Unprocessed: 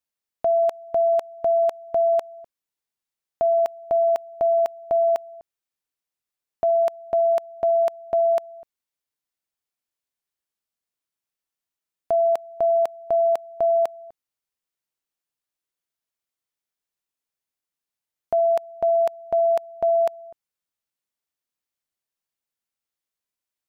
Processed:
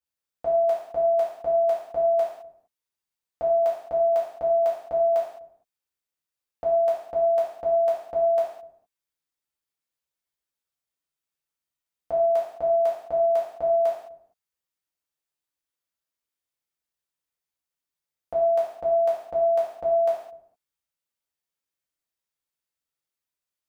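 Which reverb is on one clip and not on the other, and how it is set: non-linear reverb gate 0.24 s falling, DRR -7.5 dB; gain -9 dB

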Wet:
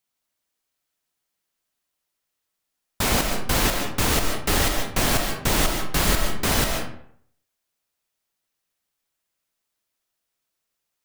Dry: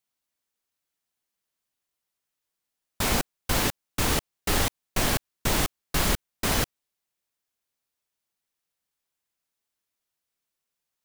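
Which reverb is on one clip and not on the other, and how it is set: digital reverb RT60 0.64 s, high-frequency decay 0.65×, pre-delay 0.1 s, DRR 3.5 dB; gain +3 dB

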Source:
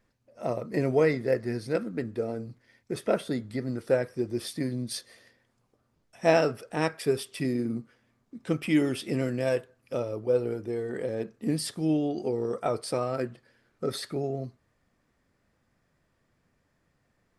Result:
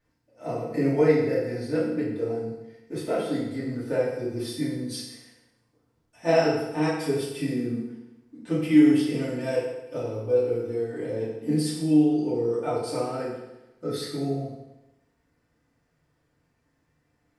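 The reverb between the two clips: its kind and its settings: FDN reverb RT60 0.98 s, low-frequency decay 1×, high-frequency decay 0.85×, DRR -9 dB; gain -9 dB

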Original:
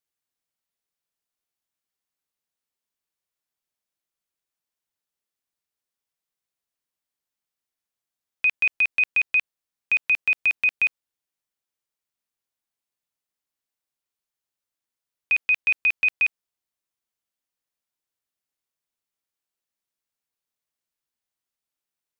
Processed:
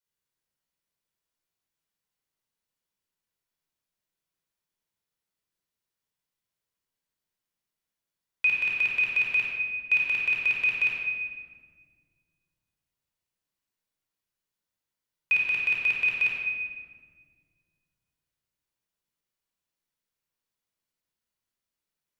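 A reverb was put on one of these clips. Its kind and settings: shoebox room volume 2100 m³, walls mixed, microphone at 4.8 m; gain -6.5 dB

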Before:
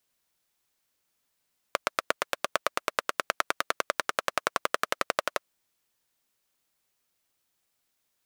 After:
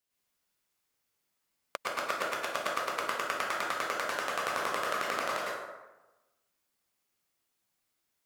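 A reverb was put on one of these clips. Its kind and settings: plate-style reverb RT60 1.1 s, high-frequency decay 0.55×, pre-delay 95 ms, DRR -6 dB; gain -9 dB

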